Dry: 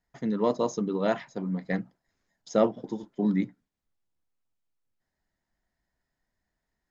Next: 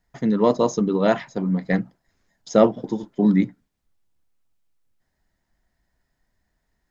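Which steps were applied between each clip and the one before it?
low-shelf EQ 110 Hz +5.5 dB
level +7 dB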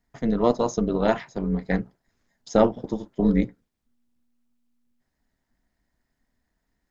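amplitude modulation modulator 240 Hz, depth 50%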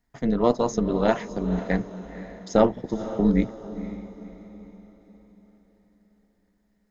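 feedback delay with all-pass diffusion 509 ms, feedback 43%, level −13 dB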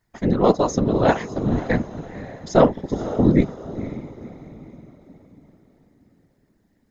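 random phases in short frames
level +4 dB

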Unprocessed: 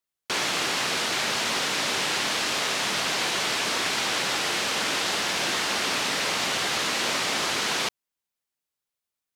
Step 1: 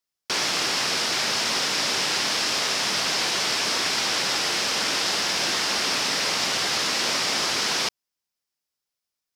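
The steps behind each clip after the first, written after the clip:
parametric band 5,200 Hz +8 dB 0.42 octaves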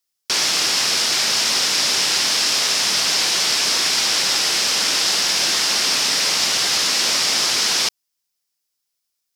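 high-shelf EQ 3,100 Hz +10 dB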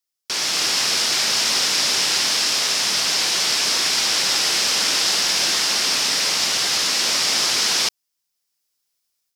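automatic gain control gain up to 8 dB
level −5.5 dB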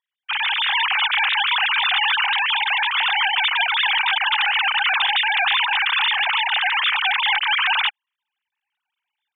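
three sine waves on the formant tracks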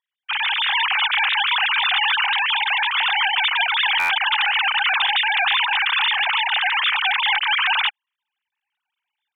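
buffer that repeats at 0:03.99, samples 512, times 8

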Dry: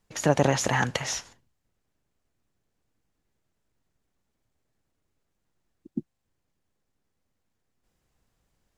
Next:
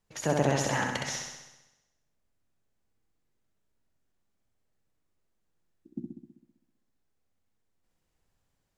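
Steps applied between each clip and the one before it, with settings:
mains-hum notches 60/120/180/240/300/360 Hz
on a send: flutter between parallel walls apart 11.1 metres, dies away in 0.98 s
on the sum: level −6 dB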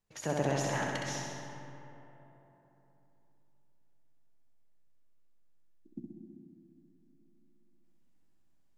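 comb and all-pass reverb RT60 3.5 s, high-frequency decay 0.45×, pre-delay 55 ms, DRR 5 dB
level −6 dB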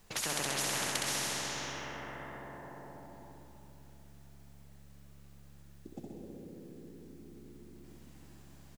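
on a send: echo with shifted repeats 86 ms, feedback 34%, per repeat +70 Hz, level −12 dB
on the sum: every bin compressed towards the loudest bin 4 to 1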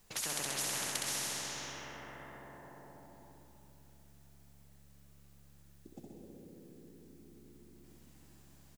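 high-shelf EQ 5,200 Hz +6.5 dB
level −5.5 dB

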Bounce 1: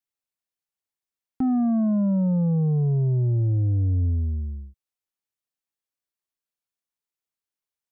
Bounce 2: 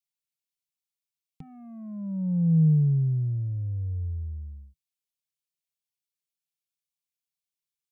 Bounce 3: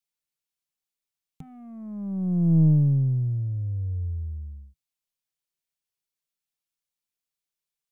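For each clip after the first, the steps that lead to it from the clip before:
drawn EQ curve 110 Hz 0 dB, 160 Hz +12 dB, 260 Hz −22 dB, 460 Hz −2 dB, 670 Hz −14 dB, 1,000 Hz −6 dB, 1,600 Hz −14 dB, 2,200 Hz +6 dB, 3,600 Hz +8 dB; level −8.5 dB
stylus tracing distortion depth 0.43 ms; level +1.5 dB

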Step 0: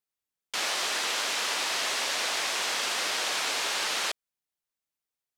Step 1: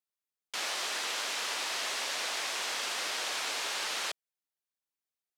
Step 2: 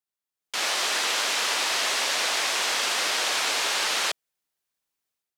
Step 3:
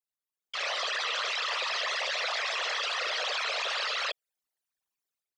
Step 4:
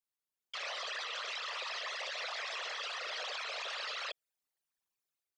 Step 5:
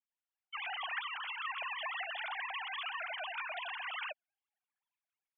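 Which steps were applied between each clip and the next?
low-shelf EQ 110 Hz −11 dB; level −5 dB
automatic gain control gain up to 9 dB
spectral envelope exaggerated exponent 3; level −5.5 dB
brickwall limiter −29.5 dBFS, peak gain reduction 10 dB; level −2 dB
three sine waves on the formant tracks

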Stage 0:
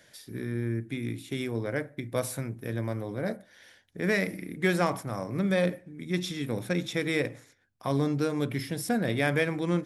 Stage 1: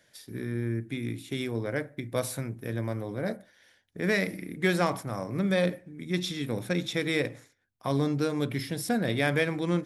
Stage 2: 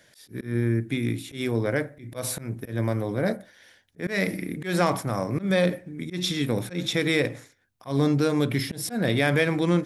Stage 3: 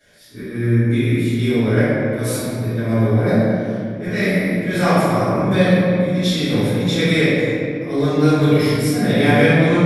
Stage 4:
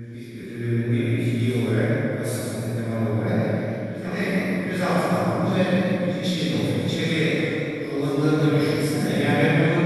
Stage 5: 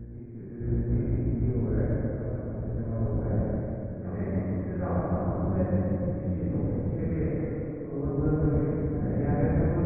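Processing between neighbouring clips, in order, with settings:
noise gate −51 dBFS, range −6 dB; dynamic equaliser 4,000 Hz, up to +4 dB, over −49 dBFS, Q 2.4
in parallel at +1.5 dB: brickwall limiter −21 dBFS, peak gain reduction 9.5 dB; on the sum: volume swells 153 ms
convolution reverb RT60 2.5 s, pre-delay 3 ms, DRR −17.5 dB; level −9 dB
backwards echo 783 ms −13.5 dB; feedback echo with a swinging delay time 146 ms, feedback 51%, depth 71 cents, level −5 dB; level −7.5 dB
sub-octave generator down 1 octave, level 0 dB; Gaussian smoothing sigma 6.7 samples; level −7 dB

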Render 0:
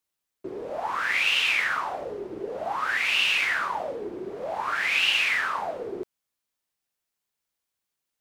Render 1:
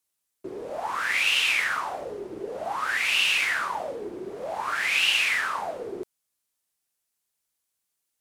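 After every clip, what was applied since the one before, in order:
parametric band 10,000 Hz +8.5 dB 1.5 octaves
level −1 dB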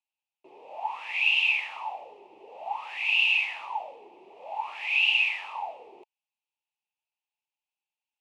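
pair of resonant band-passes 1,500 Hz, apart 1.6 octaves
level +3 dB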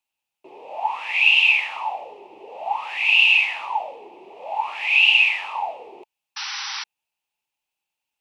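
sound drawn into the spectrogram noise, 0:06.36–0:06.84, 770–6,000 Hz −38 dBFS
level +8 dB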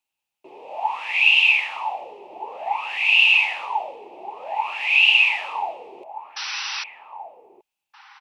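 slap from a distant wall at 270 metres, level −8 dB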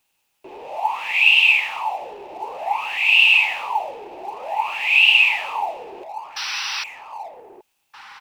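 mu-law and A-law mismatch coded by mu
level +1.5 dB

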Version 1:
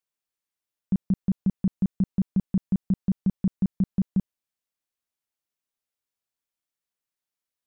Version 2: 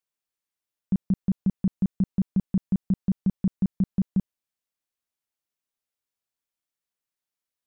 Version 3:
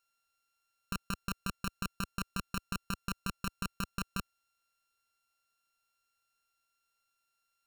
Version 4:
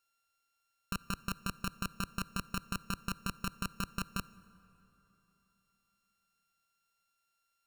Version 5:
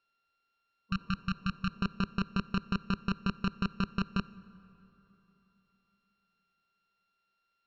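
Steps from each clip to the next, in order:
no processing that can be heard
samples sorted by size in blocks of 32 samples; compressor whose output falls as the input rises −26 dBFS, ratio −0.5; parametric band 210 Hz −10 dB 2.6 octaves; level +1 dB
convolution reverb RT60 3.6 s, pre-delay 38 ms, DRR 18.5 dB
healed spectral selection 0:00.92–0:01.68, 200–1,100 Hz after; inverse Chebyshev low-pass filter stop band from 10,000 Hz, stop band 50 dB; hollow resonant body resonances 200/390 Hz, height 8 dB; level +2.5 dB

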